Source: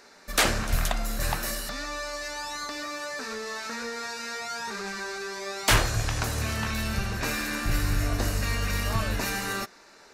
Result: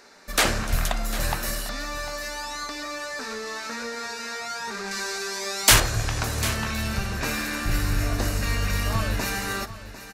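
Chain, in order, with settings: 4.91–5.8 high shelf 3600 Hz +10.5 dB; on a send: echo 0.749 s -14 dB; on the sum: gain +1.5 dB

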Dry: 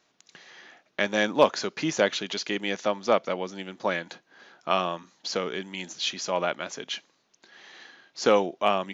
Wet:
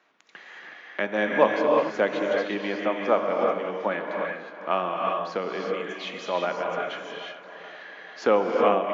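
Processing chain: three-band isolator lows -12 dB, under 180 Hz, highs -21 dB, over 2500 Hz; 1.53–1.94 compressor, threshold -33 dBFS, peak gain reduction 8.5 dB; darkening echo 0.436 s, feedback 52%, low-pass 2300 Hz, level -14 dB; non-linear reverb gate 0.39 s rising, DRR 0 dB; mismatched tape noise reduction encoder only

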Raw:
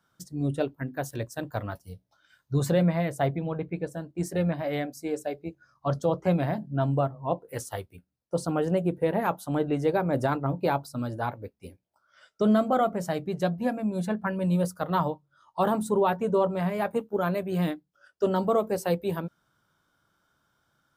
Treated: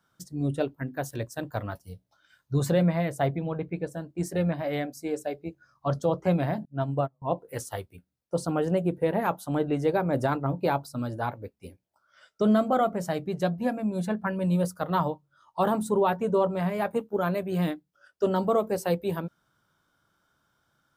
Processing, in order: 6.65–7.22 upward expander 2.5:1, over -41 dBFS

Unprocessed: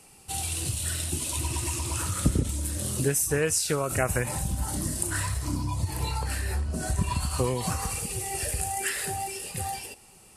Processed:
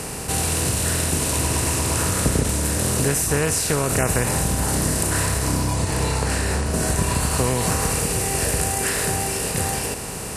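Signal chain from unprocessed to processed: per-bin compression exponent 0.4; 5.73–6.66 LPF 9600 Hz 12 dB/oct

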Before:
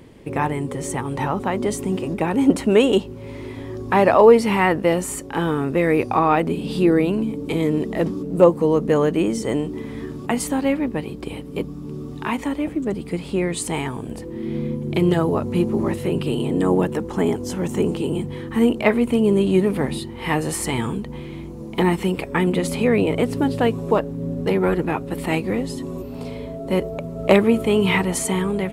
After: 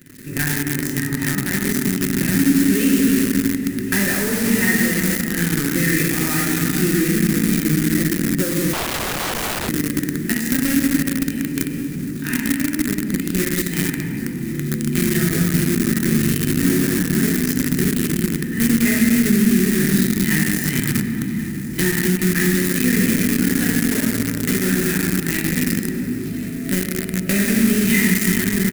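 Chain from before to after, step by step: median filter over 5 samples; HPF 120 Hz 6 dB/oct; notch comb 1100 Hz; reverb RT60 2.9 s, pre-delay 5 ms, DRR -5.5 dB; in parallel at -8 dB: companded quantiser 2-bit; on the sum: compressor 3:1, threshold -10 dBFS, peak gain reduction 8 dB; EQ curve 260 Hz 0 dB, 500 Hz -17 dB, 860 Hz -23 dB, 1800 Hz +3 dB, 2900 Hz -6 dB, 11000 Hz +10 dB; on a send: echo 1.082 s -17 dB; 8.73–9.69 on the sum: wrapped overs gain 16.5 dB; gain -2 dB

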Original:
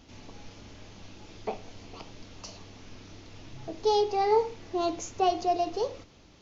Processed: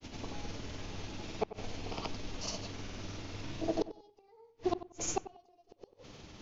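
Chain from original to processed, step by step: grains 0.1 s, grains 20/s, spray 0.1 s, pitch spread up and down by 0 st; flipped gate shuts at -25 dBFS, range -42 dB; darkening echo 93 ms, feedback 25%, low-pass 1800 Hz, level -13 dB; gain +6 dB

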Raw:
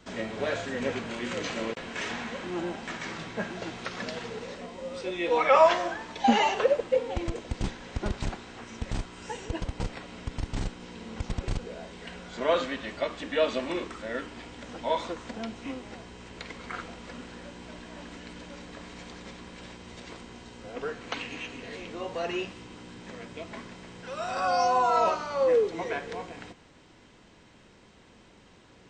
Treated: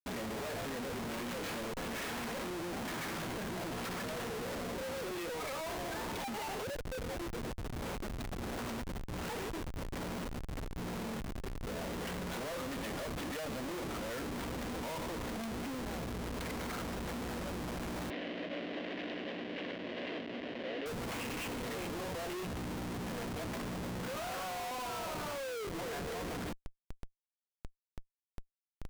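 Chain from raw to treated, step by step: compressor 10:1, threshold -36 dBFS, peak gain reduction 22 dB; Schmitt trigger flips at -45.5 dBFS; 18.1–20.86 speaker cabinet 280–3900 Hz, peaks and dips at 280 Hz +6 dB, 610 Hz +6 dB, 880 Hz -9 dB, 1300 Hz -8 dB, 1900 Hz +5 dB, 2900 Hz +6 dB; gain +2.5 dB

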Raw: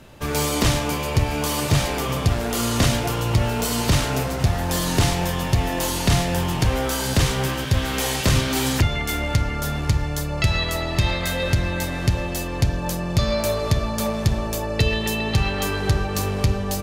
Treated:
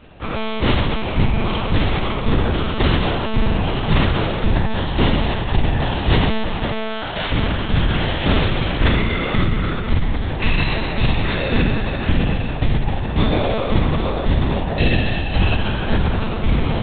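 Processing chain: spectral trails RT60 2.46 s; 6.58–7.31 HPF 120 Hz -> 500 Hz 24 dB/oct; monotone LPC vocoder at 8 kHz 220 Hz; gain -1 dB

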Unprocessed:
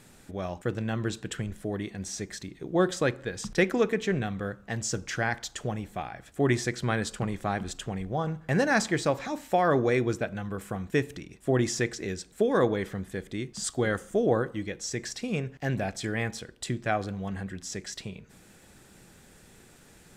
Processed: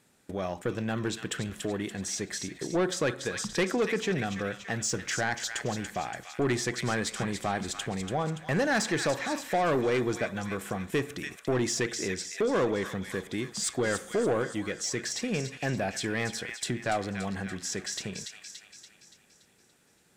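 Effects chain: gate -46 dBFS, range -17 dB; HPF 170 Hz 6 dB/oct; on a send: thin delay 0.286 s, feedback 51%, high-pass 1800 Hz, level -7.5 dB; on the sum: soft clip -22.5 dBFS, distortion -12 dB; in parallel at +2.5 dB: compressor, threshold -43 dBFS, peak gain reduction 16.5 dB

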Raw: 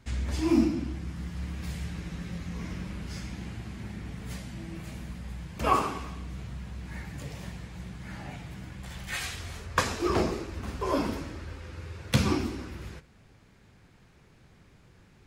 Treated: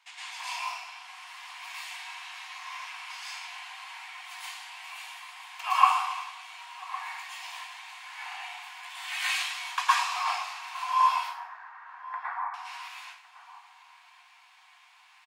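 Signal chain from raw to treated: 11.16–12.54 elliptic low-pass 1800 Hz, stop band 40 dB; in parallel at +0.5 dB: compressor, threshold -34 dBFS, peak gain reduction 15.5 dB; on the sum: rippled Chebyshev high-pass 710 Hz, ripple 9 dB; outdoor echo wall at 190 m, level -15 dB; reverb RT60 0.50 s, pre-delay 0.103 s, DRR -8 dB; gain -2 dB

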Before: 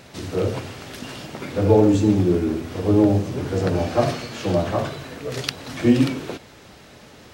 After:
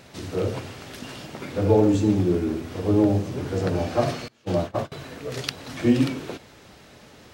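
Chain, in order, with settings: 4.28–4.92 gate -22 dBFS, range -25 dB; gain -3 dB

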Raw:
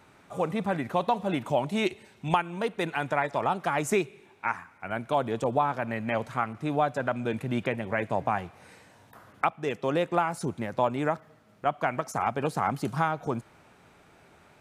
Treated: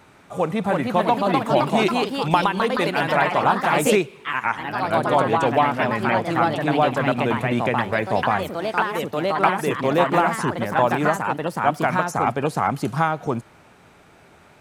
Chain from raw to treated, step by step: echoes that change speed 0.371 s, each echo +2 st, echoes 3; gain +6 dB

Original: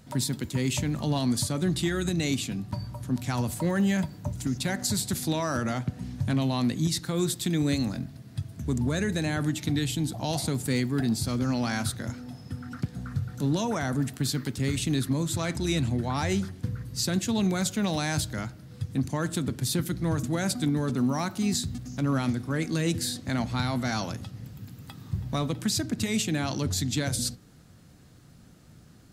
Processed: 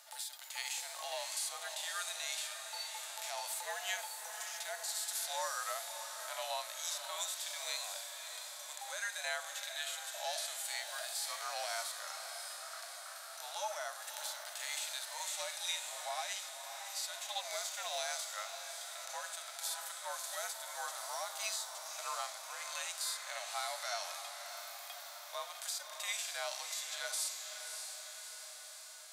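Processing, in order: steep high-pass 690 Hz 72 dB/oct; frequency shift -77 Hz; compressor, threshold -37 dBFS, peak gain reduction 11.5 dB; on a send: diffused feedback echo 0.605 s, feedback 65%, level -9.5 dB; on the sum: harmonic-percussive split percussive -17 dB; high shelf 4200 Hz +8 dB; gain +3.5 dB

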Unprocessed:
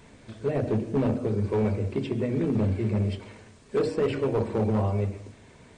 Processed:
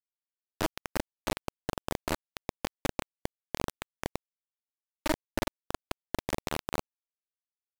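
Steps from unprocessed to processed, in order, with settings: half-wave gain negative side -12 dB; comb 2.6 ms, depth 82%; compressor 12:1, threshold -30 dBFS, peak gain reduction 13 dB; on a send: early reflections 31 ms -3.5 dB, 53 ms -15.5 dB; on the sum: bit-crush 4-bit; speed mistake 45 rpm record played at 33 rpm

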